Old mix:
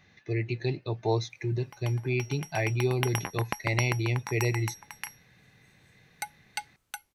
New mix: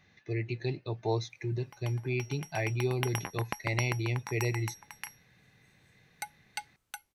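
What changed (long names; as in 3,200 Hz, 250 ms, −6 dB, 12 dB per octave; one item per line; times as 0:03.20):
speech −3.5 dB
background −3.5 dB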